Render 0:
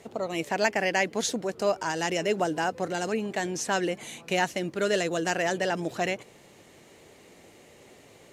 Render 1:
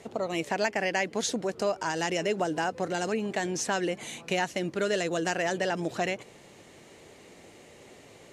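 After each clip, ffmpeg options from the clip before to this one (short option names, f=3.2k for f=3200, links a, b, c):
-af "lowpass=11k,acompressor=threshold=-28dB:ratio=2,volume=1.5dB"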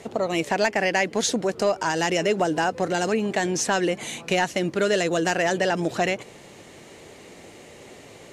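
-af "asoftclip=type=tanh:threshold=-14dB,volume=6.5dB"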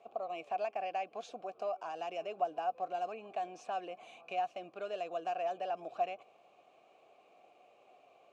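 -filter_complex "[0:a]asplit=3[a][b][c];[a]bandpass=f=730:t=q:w=8,volume=0dB[d];[b]bandpass=f=1.09k:t=q:w=8,volume=-6dB[e];[c]bandpass=f=2.44k:t=q:w=8,volume=-9dB[f];[d][e][f]amix=inputs=3:normalize=0,volume=-6dB"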